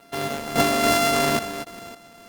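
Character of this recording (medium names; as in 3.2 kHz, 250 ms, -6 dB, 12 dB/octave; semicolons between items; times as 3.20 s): a buzz of ramps at a fixed pitch in blocks of 64 samples; random-step tremolo 3.6 Hz, depth 85%; Opus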